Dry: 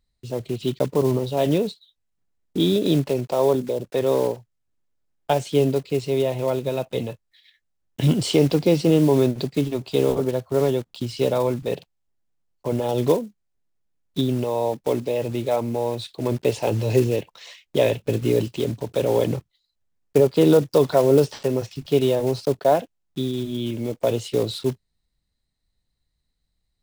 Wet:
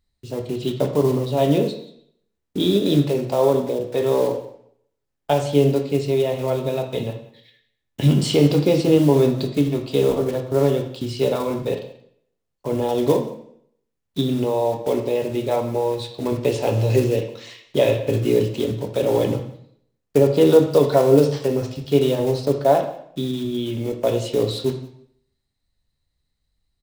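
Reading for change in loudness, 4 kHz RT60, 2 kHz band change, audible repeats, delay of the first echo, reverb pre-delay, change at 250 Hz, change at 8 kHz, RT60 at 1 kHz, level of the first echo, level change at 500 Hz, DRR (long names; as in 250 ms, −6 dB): +2.0 dB, 0.60 s, +1.5 dB, 1, 179 ms, 5 ms, +2.0 dB, +0.5 dB, 0.65 s, −21.0 dB, +2.0 dB, 3.5 dB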